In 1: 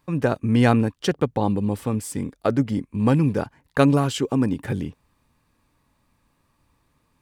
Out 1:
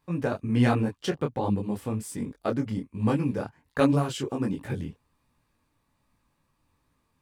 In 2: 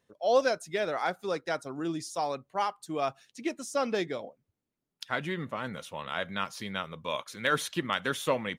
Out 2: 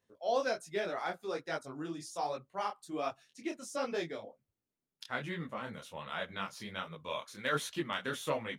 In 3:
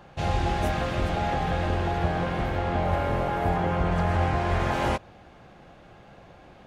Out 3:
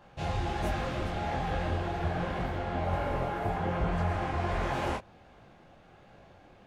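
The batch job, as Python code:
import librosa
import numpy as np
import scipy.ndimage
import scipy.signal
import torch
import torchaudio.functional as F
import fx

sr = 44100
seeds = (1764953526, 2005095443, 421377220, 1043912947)

y = fx.detune_double(x, sr, cents=45)
y = y * 10.0 ** (-2.0 / 20.0)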